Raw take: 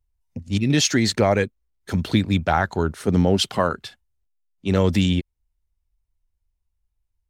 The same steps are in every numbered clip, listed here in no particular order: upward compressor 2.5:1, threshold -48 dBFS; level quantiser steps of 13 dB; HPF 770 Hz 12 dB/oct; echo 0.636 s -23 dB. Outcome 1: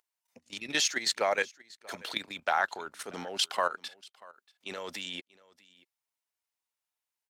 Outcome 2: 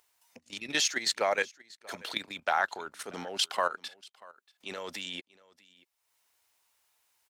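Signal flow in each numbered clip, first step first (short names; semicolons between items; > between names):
upward compressor > HPF > level quantiser > echo; HPF > level quantiser > upward compressor > echo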